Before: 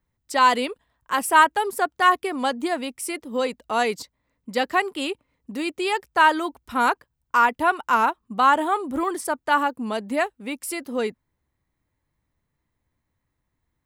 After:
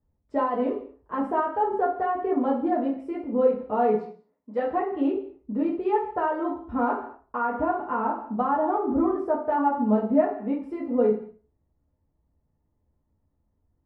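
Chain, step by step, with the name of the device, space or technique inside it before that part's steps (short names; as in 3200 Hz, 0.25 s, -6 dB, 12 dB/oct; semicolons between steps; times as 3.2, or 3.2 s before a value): 3.96–4.66 weighting filter A; non-linear reverb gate 0.24 s falling, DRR 8.5 dB; television next door (compressor 5:1, threshold -19 dBFS, peak gain reduction 10 dB; LPF 590 Hz 12 dB/oct; reverb RT60 0.35 s, pre-delay 5 ms, DRR -4.5 dB)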